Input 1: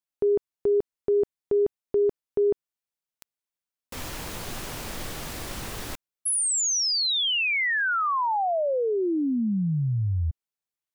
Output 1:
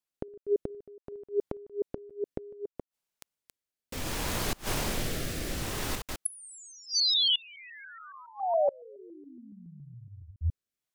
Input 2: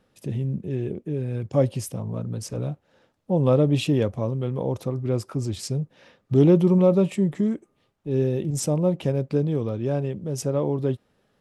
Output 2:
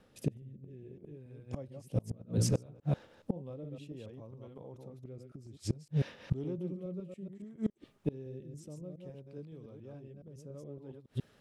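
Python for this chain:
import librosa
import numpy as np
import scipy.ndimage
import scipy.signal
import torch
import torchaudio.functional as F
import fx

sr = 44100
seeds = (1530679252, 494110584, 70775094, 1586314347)

y = fx.reverse_delay(x, sr, ms=140, wet_db=-4)
y = fx.rotary(y, sr, hz=0.6)
y = fx.gate_flip(y, sr, shuts_db=-22.0, range_db=-27)
y = y * 10.0 ** (4.0 / 20.0)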